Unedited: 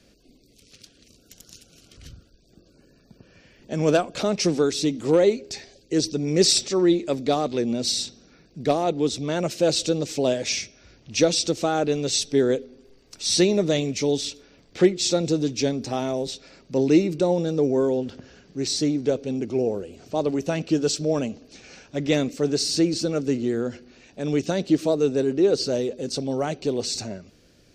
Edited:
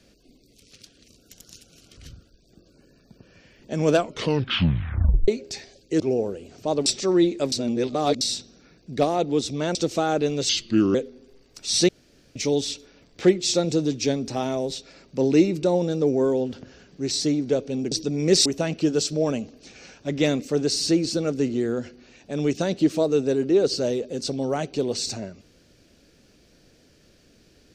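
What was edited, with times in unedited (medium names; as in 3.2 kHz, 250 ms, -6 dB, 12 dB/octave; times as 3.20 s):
3.97 s: tape stop 1.31 s
6.00–6.54 s: swap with 19.48–20.34 s
7.20–7.89 s: reverse
9.43–11.41 s: delete
12.15–12.51 s: speed 79%
13.45–13.92 s: room tone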